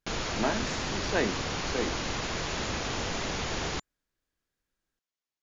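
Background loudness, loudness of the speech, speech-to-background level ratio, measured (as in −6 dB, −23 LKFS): −32.0 LKFS, −33.5 LKFS, −1.5 dB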